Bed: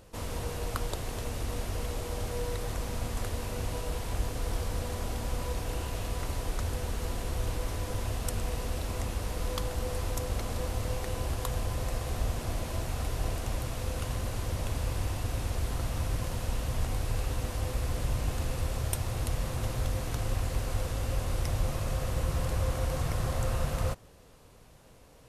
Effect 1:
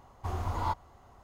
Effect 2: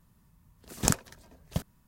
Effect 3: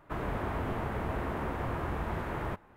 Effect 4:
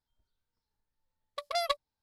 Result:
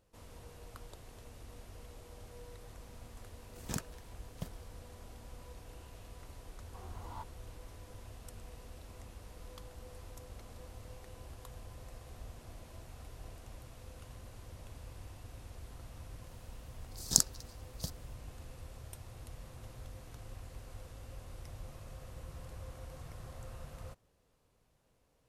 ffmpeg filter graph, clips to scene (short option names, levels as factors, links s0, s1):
-filter_complex "[2:a]asplit=2[s0][s1];[0:a]volume=0.133[s2];[s0]asoftclip=type=hard:threshold=0.178[s3];[s1]highshelf=f=3400:t=q:w=3:g=10.5[s4];[s3]atrim=end=1.87,asetpts=PTS-STARTPTS,volume=0.282,afade=t=in:d=0.004:c=hsin,afade=t=out:st=1.866:d=0.004:c=hsin,adelay=2860[s5];[1:a]atrim=end=1.23,asetpts=PTS-STARTPTS,volume=0.168,afade=t=in:d=0.004:c=hsin,afade=t=out:st=1.226:d=0.004:c=hsin,adelay=286650S[s6];[s4]atrim=end=1.87,asetpts=PTS-STARTPTS,volume=0.266,afade=t=in:d=0.004:c=hsin,afade=t=out:st=1.866:d=0.004:c=hsin,adelay=16280[s7];[s2][s5][s6][s7]amix=inputs=4:normalize=0"